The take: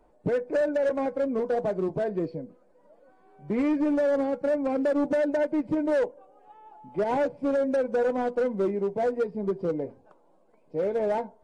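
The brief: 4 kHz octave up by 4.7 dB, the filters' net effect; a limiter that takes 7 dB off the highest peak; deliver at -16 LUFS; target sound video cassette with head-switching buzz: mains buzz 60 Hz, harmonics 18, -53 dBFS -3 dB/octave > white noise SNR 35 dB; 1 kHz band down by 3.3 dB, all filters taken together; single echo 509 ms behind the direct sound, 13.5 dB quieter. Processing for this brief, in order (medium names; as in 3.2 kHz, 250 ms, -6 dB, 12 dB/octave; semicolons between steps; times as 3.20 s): peaking EQ 1 kHz -5 dB; peaking EQ 4 kHz +6.5 dB; peak limiter -26 dBFS; delay 509 ms -13.5 dB; mains buzz 60 Hz, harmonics 18, -53 dBFS -3 dB/octave; white noise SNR 35 dB; trim +17 dB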